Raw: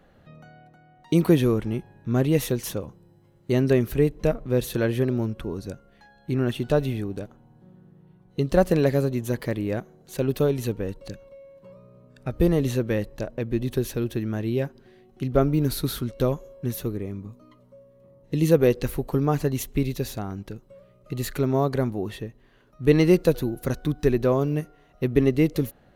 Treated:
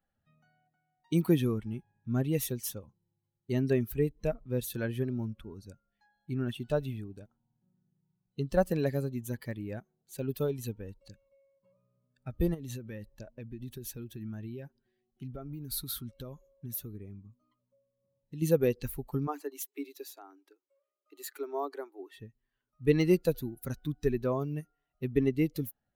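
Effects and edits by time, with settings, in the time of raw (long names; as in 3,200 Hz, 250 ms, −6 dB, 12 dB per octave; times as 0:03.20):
0:12.54–0:18.42: downward compressor 12 to 1, threshold −24 dBFS
0:19.27–0:22.18: Chebyshev high-pass with heavy ripple 280 Hz, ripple 3 dB
whole clip: spectral dynamics exaggerated over time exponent 1.5; high-shelf EQ 9,700 Hz +10 dB; level −5.5 dB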